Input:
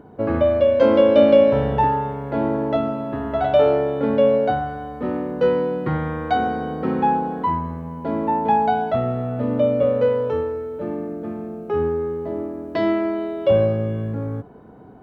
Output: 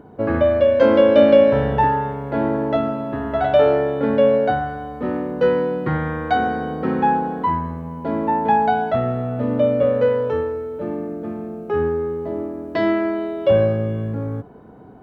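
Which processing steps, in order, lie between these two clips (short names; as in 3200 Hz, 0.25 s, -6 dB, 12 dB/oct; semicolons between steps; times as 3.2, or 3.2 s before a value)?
dynamic EQ 1700 Hz, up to +6 dB, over -43 dBFS, Q 3.5; gain +1 dB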